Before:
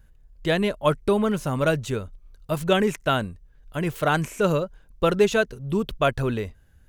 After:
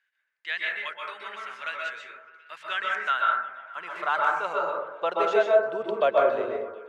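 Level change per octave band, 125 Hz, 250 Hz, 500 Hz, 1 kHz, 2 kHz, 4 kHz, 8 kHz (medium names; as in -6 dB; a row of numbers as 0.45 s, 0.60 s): under -30 dB, -18.0 dB, -2.5 dB, +1.5 dB, +1.0 dB, -5.5 dB, under -15 dB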